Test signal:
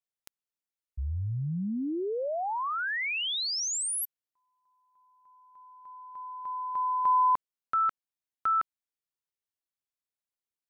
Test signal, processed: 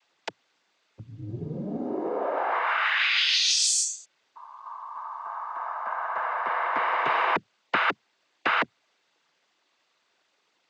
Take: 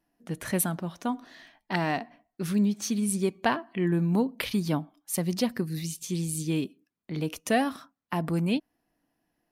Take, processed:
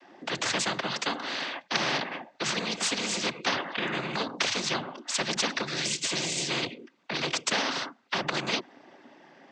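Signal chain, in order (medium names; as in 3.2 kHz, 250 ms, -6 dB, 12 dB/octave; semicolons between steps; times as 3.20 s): noise-vocoded speech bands 16; three-band isolator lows -16 dB, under 250 Hz, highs -20 dB, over 4.9 kHz; spectrum-flattening compressor 4:1; trim +3 dB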